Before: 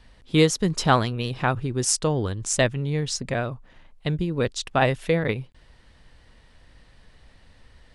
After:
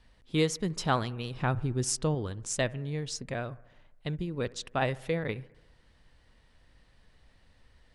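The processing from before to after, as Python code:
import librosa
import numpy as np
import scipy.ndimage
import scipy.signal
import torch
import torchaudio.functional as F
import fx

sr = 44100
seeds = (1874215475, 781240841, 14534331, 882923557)

y = fx.low_shelf(x, sr, hz=260.0, db=7.5, at=(1.34, 2.15))
y = fx.echo_bbd(y, sr, ms=68, stages=1024, feedback_pct=64, wet_db=-22.0)
y = y * 10.0 ** (-8.5 / 20.0)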